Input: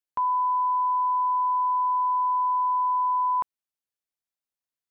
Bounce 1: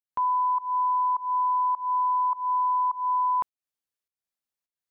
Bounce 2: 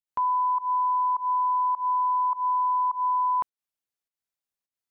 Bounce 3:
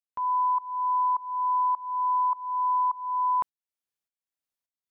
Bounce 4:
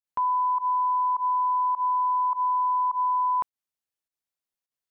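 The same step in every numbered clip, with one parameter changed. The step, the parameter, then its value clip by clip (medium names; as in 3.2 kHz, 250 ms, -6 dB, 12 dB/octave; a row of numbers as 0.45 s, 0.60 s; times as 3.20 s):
volume shaper, release: 253 ms, 171 ms, 490 ms, 105 ms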